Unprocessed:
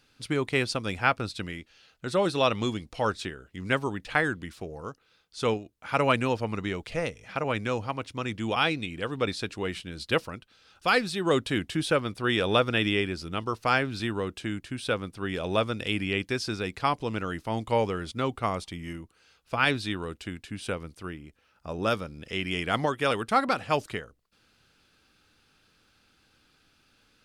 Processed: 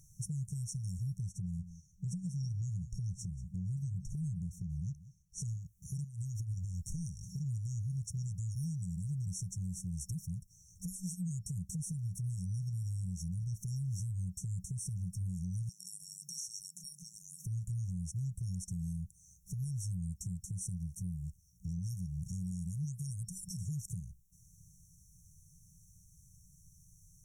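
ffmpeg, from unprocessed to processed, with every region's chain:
-filter_complex "[0:a]asettb=1/sr,asplit=3[s0][s1][s2];[s0]atrim=end=1.264[s3];[s1]atrim=start=1.26:end=5.42,asetpts=PTS-STARTPTS,afade=t=in:d=0.004:c=qsin,afade=t=out:st=4.156:d=0.004:c=qsin,highshelf=f=5000:g=-12,aecho=1:1:185:0.112,atrim=end_sample=183456[s4];[s2]atrim=start=5.416[s5];[s3][s4]acrossfade=d=0.004:c1=hsin:c2=qsin[s6];[s6][s5]acrossfade=d=0.004:c1=qsin:c2=hsin,asettb=1/sr,asplit=3[s7][s8][s9];[s7]atrim=end=6.044[s10];[s8]atrim=start=6.04:end=6.84,asetpts=PTS-STARTPTS,afade=t=in:d=0.004:c=qsin,afade=t=out:st=0.796:d=0.004:c=qsin,equalizer=f=190:t=o:w=0.31:g=-14.5,acompressor=threshold=0.0224:ratio=20:attack=3.2:release=140:knee=1:detection=peak[s11];[s9]atrim=start=6.836[s12];[s10][s11]acrossfade=d=0.004:c1=hsin:c2=qsin[s13];[s13][s12]acrossfade=d=0.004:c1=qsin:c2=hsin,asettb=1/sr,asplit=3[s14][s15][s16];[s14]atrim=end=15.694[s17];[s15]atrim=start=15.69:end=17.46,asetpts=PTS-STARTPTS,afade=t=in:d=0.004:c=qsin,afade=t=out:st=1.766:d=0.004:c=qsin,afreqshift=140,acrossover=split=120|3000[s18][s19][s20];[s19]acompressor=threshold=0.00316:ratio=2:attack=3.2:release=140:knee=2.83:detection=peak[s21];[s18][s21][s20]amix=inputs=3:normalize=0[s22];[s16]atrim=start=17.456[s23];[s17][s22]acrossfade=d=0.004:c1=hsin:c2=qsin[s24];[s24][s23]acrossfade=d=0.004:c1=qsin:c2=hsin,afftfilt=real='re*(1-between(b*sr/4096,190,5500))':imag='im*(1-between(b*sr/4096,190,5500))':win_size=4096:overlap=0.75,acompressor=threshold=0.00562:ratio=6,alimiter=level_in=7.94:limit=0.0631:level=0:latency=1:release=91,volume=0.126,volume=3.55"

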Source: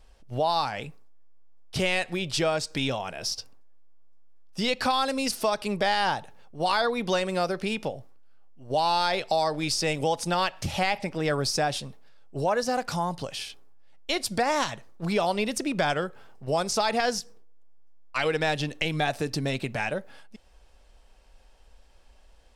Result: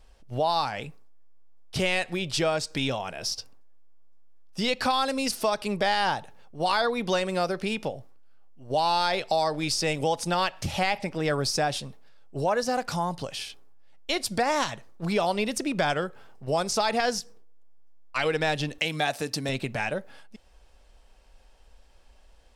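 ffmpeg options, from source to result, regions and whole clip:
-filter_complex "[0:a]asettb=1/sr,asplit=3[s0][s1][s2];[s0]atrim=end=18.784[s3];[s1]atrim=start=18.78:end=19.49,asetpts=PTS-STARTPTS,afade=t=in:d=0.004:c=qsin,afade=t=out:st=0.706:d=0.004:c=qsin,highpass=f=210:p=1,highshelf=f=4700:g=5.5,bandreject=f=370:w=5.8[s4];[s2]atrim=start=19.486[s5];[s3][s4]acrossfade=d=0.004:c1=hsin:c2=qsin[s6];[s6][s5]acrossfade=d=0.004:c1=qsin:c2=hsin"

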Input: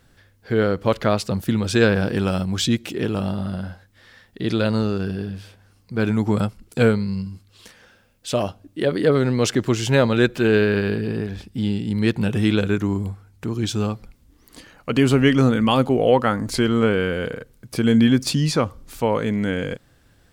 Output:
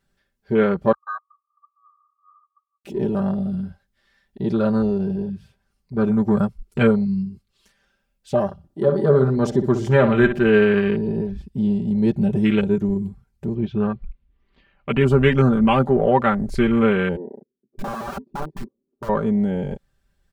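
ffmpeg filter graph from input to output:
-filter_complex "[0:a]asettb=1/sr,asplit=3[s0][s1][s2];[s0]atrim=end=0.924[s3];[s1]atrim=start=0.92:end=2.85,asetpts=PTS-STARTPTS,afade=t=in:d=0.004:c=qsin,afade=t=out:st=1.926:d=0.004:c=qsin,afreqshift=-15,asuperpass=centerf=1200:order=20:qfactor=7.3[s4];[s2]atrim=start=2.846[s5];[s3][s4]acrossfade=d=0.004:c1=hsin:c2=qsin[s6];[s6][s5]acrossfade=d=0.004:c1=qsin:c2=hsin,asettb=1/sr,asplit=3[s7][s8][s9];[s7]atrim=end=8.454[s10];[s8]atrim=start=8.45:end=10.46,asetpts=PTS-STARTPTS,afade=t=in:d=0.004:c=qsin,afade=t=out:st=2.006:d=0.004:c=qsin,equalizer=f=2700:w=6.9:g=-9,bandreject=f=2200:w=22,asplit=2[s11][s12];[s12]adelay=61,lowpass=f=3200:p=1,volume=0.376,asplit=2[s13][s14];[s14]adelay=61,lowpass=f=3200:p=1,volume=0.39,asplit=2[s15][s16];[s16]adelay=61,lowpass=f=3200:p=1,volume=0.39,asplit=2[s17][s18];[s18]adelay=61,lowpass=f=3200:p=1,volume=0.39[s19];[s11][s13][s15][s17][s19]amix=inputs=5:normalize=0,atrim=end_sample=88641[s20];[s9]atrim=start=10.456[s21];[s10][s20]acrossfade=d=0.004:c1=hsin:c2=qsin[s22];[s22][s21]acrossfade=d=0.004:c1=qsin:c2=hsin,asettb=1/sr,asplit=3[s23][s24][s25];[s23]atrim=end=13.544[s26];[s24]atrim=start=13.54:end=15.01,asetpts=PTS-STARTPTS,afade=t=in:d=0.004:c=qsin,afade=t=out:st=1.466:d=0.004:c=qsin,lowpass=f=3400:w=0.5412,lowpass=f=3400:w=1.3066,deesser=0.9,equalizer=f=2500:t=o:w=0.66:g=4[s27];[s25]atrim=start=15.006[s28];[s26][s27]acrossfade=d=0.004:c1=hsin:c2=qsin[s29];[s29][s28]acrossfade=d=0.004:c1=qsin:c2=hsin,asettb=1/sr,asplit=3[s30][s31][s32];[s30]atrim=end=17.164[s33];[s31]atrim=start=17.16:end=19.09,asetpts=PTS-STARTPTS,afade=t=in:d=0.004:c=qsin,afade=t=out:st=1.926:d=0.004:c=qsin,asuperpass=centerf=320:order=4:qfactor=2,aeval=exprs='(mod(14.1*val(0)+1,2)-1)/14.1':c=same[s34];[s32]atrim=start=19.086[s35];[s33][s34]acrossfade=d=0.004:c1=hsin:c2=qsin[s36];[s36][s35]acrossfade=d=0.004:c1=qsin:c2=hsin,afwtdn=0.0447,asubboost=boost=2:cutoff=130,aecho=1:1:5.1:0.78"

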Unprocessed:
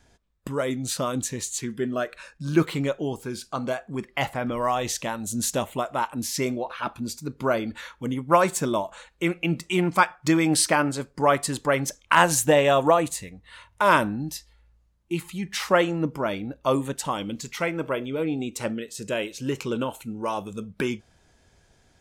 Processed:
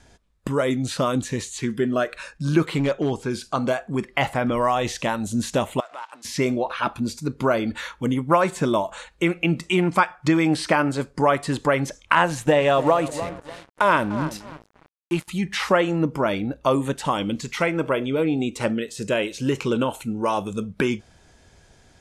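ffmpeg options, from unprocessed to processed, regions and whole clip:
-filter_complex "[0:a]asettb=1/sr,asplit=3[s0][s1][s2];[s0]atrim=end=2.784[s3];[s1]atrim=start=2.78:end=3.31,asetpts=PTS-STARTPTS,afade=t=in:d=0.004:c=qsin,afade=t=out:st=0.526:d=0.004:c=qsin,lowpass=7200,asoftclip=type=hard:threshold=0.0794[s4];[s2]atrim=start=3.306[s5];[s3][s4]acrossfade=d=0.004:c1=hsin:c2=qsin[s6];[s6][s5]acrossfade=d=0.004:c1=qsin:c2=hsin,asettb=1/sr,asplit=3[s7][s8][s9];[s7]atrim=end=5.804[s10];[s8]atrim=start=5.8:end=6.25,asetpts=PTS-STARTPTS,afade=t=in:d=0.004:c=qsin,afade=t=out:st=0.446:d=0.004:c=qsin,acompressor=threshold=0.0158:ratio=5:attack=3.2:release=140:knee=1:detection=peak,aeval=exprs='sgn(val(0))*max(abs(val(0))-0.00133,0)':c=same,highpass=750,lowpass=7800[s11];[s9]atrim=start=6.246[s12];[s10][s11]acrossfade=d=0.004:c1=hsin:c2=qsin[s13];[s13][s12]acrossfade=d=0.004:c1=qsin:c2=hsin,asettb=1/sr,asplit=3[s14][s15][s16];[s14]atrim=end=12.304[s17];[s15]atrim=start=12.3:end=15.28,asetpts=PTS-STARTPTS,afade=t=in:d=0.004:c=qsin,afade=t=out:st=2.976:d=0.004:c=qsin,asplit=2[s18][s19];[s19]adelay=297,lowpass=f=1000:p=1,volume=0.2,asplit=2[s20][s21];[s21]adelay=297,lowpass=f=1000:p=1,volume=0.51,asplit=2[s22][s23];[s23]adelay=297,lowpass=f=1000:p=1,volume=0.51,asplit=2[s24][s25];[s25]adelay=297,lowpass=f=1000:p=1,volume=0.51,asplit=2[s26][s27];[s27]adelay=297,lowpass=f=1000:p=1,volume=0.51[s28];[s18][s20][s22][s24][s26][s28]amix=inputs=6:normalize=0,atrim=end_sample=131418,deesser=0.2,aeval=exprs='sgn(val(0))*max(abs(val(0))-0.00841,0)':c=same[s29];[s16]atrim=start=15.276[s30];[s17][s29]acrossfade=d=0.004:c1=hsin:c2=qsin[s31];[s31][s30]acrossfade=d=0.004:c1=qsin:c2=hsin,acrossover=split=3600[s32][s33];[s33]acompressor=threshold=0.00891:ratio=4:attack=1:release=60[s34];[s32][s34]amix=inputs=2:normalize=0,lowpass=f=12000:w=0.5412,lowpass=f=12000:w=1.3066,acompressor=threshold=0.0562:ratio=2,volume=2.11"

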